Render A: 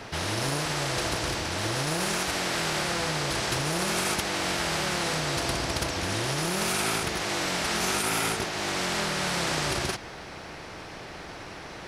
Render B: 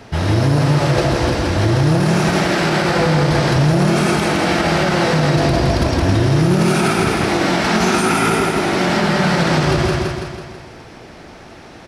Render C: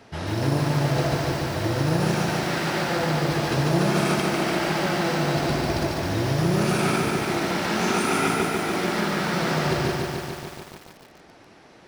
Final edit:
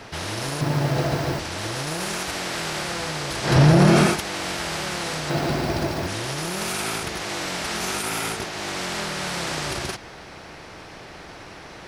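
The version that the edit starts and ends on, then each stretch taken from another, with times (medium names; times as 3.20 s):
A
0.61–1.39 s: from C
3.50–4.10 s: from B, crossfade 0.16 s
5.30–6.07 s: from C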